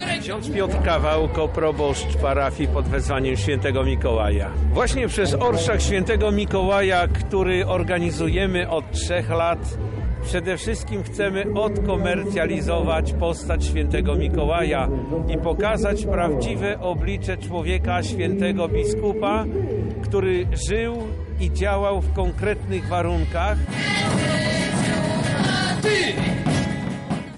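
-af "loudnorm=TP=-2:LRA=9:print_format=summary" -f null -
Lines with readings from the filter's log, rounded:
Input Integrated:    -22.2 LUFS
Input True Peak:     -11.0 dBTP
Input LRA:             3.0 LU
Input Threshold:     -32.2 LUFS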